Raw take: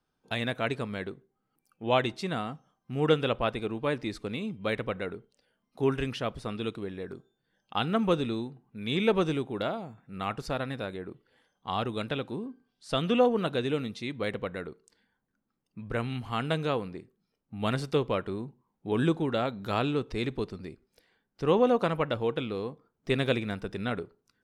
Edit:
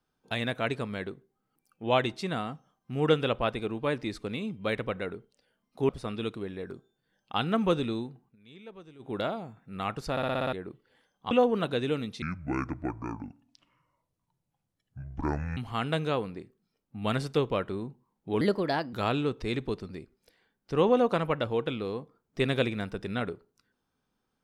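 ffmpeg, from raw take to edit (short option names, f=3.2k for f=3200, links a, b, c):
-filter_complex "[0:a]asplit=16[a][b][c][d][e][f][g][h][i][j][k][l][m][n][o][p];[a]atrim=end=5.892[q];[b]atrim=start=6.298:end=8.77,asetpts=PTS-STARTPTS,afade=t=out:st=2.352:d=0.12:silence=0.0749894[r];[c]atrim=start=8.77:end=9.4,asetpts=PTS-STARTPTS,volume=-22.5dB[s];[d]atrim=start=9.4:end=10.582,asetpts=PTS-STARTPTS,afade=t=in:d=0.12:silence=0.0749894[t];[e]atrim=start=10.518:end=10.582[u];[f]atrim=start=10.518:end=10.582[v];[g]atrim=start=10.518:end=10.582[w];[h]atrim=start=10.518:end=10.582[x];[i]atrim=start=10.518:end=10.582[y];[j]atrim=start=10.518:end=10.582[z];[k]atrim=start=10.938:end=11.722[aa];[l]atrim=start=13.128:end=14.044[ab];[m]atrim=start=14.04:end=16.15,asetpts=PTS-STARTPTS,asetrate=27783,aresample=44100[ac];[n]atrim=start=16.146:end=18.994[ad];[o]atrim=start=18.99:end=19.63,asetpts=PTS-STARTPTS,asetrate=54243,aresample=44100,atrim=end_sample=22946,asetpts=PTS-STARTPTS[ae];[p]atrim=start=19.626[af];[r][s][t]concat=n=3:v=0:a=1[ag];[q][ag]acrossfade=d=0.004:c1=hsin:c2=hsin[ah];[ah][u]acrossfade=d=0.004:c1=hsin:c2=hsin[ai];[ai][v]acrossfade=d=0.004:c1=hsin:c2=hsin[aj];[aj][w]acrossfade=d=0.004:c1=hsin:c2=hsin[ak];[ak][x]acrossfade=d=0.004:c1=hsin:c2=hsin[al];[al][y]acrossfade=d=0.004:c1=hsin:c2=hsin[am];[am][z]acrossfade=d=0.004:c1=hsin:c2=hsin[an];[an][aa]acrossfade=d=0.004:c1=hsin:c2=hsin[ao];[ao][ab]acrossfade=d=0.004:c1=hsin:c2=hsin[ap];[ap][ac]acrossfade=d=0.004:c1=hsin:c2=hsin[aq];[aq][ad]acrossfade=d=0.004:c1=hsin:c2=hsin[ar];[ar][ae]acrossfade=d=0.004:c1=hsin:c2=hsin[as];[as][af]acrossfade=d=0.004:c1=hsin:c2=hsin"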